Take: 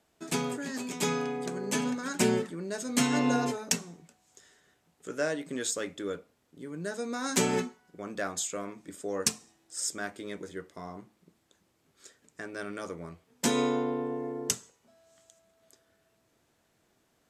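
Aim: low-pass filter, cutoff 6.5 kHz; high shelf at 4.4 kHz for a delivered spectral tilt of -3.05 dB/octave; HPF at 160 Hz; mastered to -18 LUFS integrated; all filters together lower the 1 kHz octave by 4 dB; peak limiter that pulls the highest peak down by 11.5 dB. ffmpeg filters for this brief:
-af "highpass=160,lowpass=6500,equalizer=f=1000:t=o:g=-6,highshelf=f=4400:g=7,volume=6.68,alimiter=limit=0.596:level=0:latency=1"

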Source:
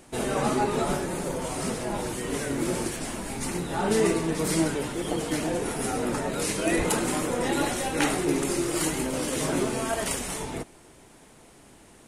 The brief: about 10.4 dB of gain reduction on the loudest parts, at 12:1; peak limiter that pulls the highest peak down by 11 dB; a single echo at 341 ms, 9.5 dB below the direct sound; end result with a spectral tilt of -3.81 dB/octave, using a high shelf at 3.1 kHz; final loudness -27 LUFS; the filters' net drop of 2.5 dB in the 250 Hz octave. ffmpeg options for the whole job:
-af "equalizer=f=250:t=o:g=-3.5,highshelf=f=3100:g=6,acompressor=threshold=0.0355:ratio=12,alimiter=level_in=1.58:limit=0.0631:level=0:latency=1,volume=0.631,aecho=1:1:341:0.335,volume=2.82"

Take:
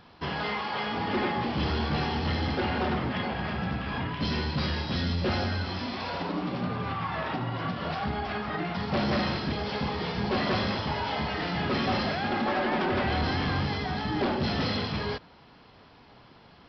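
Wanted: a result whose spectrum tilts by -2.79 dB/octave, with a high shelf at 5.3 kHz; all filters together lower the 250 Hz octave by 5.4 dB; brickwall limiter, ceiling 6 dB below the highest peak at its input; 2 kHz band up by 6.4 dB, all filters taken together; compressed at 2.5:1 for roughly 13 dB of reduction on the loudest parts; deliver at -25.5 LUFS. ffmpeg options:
-af "equalizer=f=250:t=o:g=-7.5,equalizer=f=2000:t=o:g=9,highshelf=f=5300:g=-7.5,acompressor=threshold=0.00631:ratio=2.5,volume=7.08,alimiter=limit=0.133:level=0:latency=1"

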